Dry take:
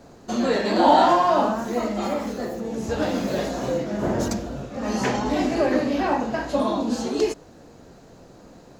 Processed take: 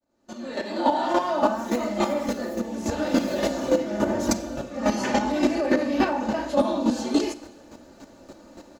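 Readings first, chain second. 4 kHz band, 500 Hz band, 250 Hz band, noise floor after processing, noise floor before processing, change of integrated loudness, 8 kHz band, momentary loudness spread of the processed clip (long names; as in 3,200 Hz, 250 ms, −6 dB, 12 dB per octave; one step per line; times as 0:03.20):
−2.0 dB, −2.0 dB, 0.0 dB, −51 dBFS, −48 dBFS, −2.0 dB, +1.5 dB, 8 LU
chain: fade in at the beginning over 1.82 s
low-shelf EQ 84 Hz −9.5 dB
comb filter 3.4 ms, depth 66%
brickwall limiter −14.5 dBFS, peak gain reduction 8.5 dB
square-wave tremolo 3.5 Hz, depth 60%, duty 15%
four-comb reverb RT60 1.1 s, combs from 30 ms, DRR 15 dB
level +5.5 dB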